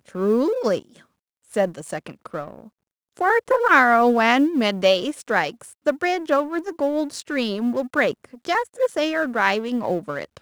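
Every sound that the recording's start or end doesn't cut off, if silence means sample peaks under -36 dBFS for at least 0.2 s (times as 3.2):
1.52–2.66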